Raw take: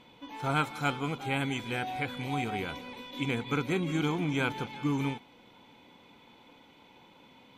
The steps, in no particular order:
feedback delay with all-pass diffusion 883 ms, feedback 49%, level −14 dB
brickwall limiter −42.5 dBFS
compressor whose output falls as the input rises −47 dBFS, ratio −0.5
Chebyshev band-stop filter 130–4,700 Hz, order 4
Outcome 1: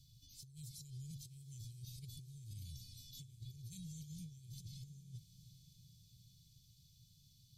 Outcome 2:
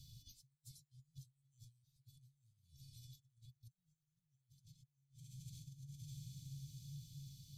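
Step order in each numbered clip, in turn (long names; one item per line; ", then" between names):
Chebyshev band-stop filter, then compressor whose output falls as the input rises, then brickwall limiter, then feedback delay with all-pass diffusion
feedback delay with all-pass diffusion, then compressor whose output falls as the input rises, then Chebyshev band-stop filter, then brickwall limiter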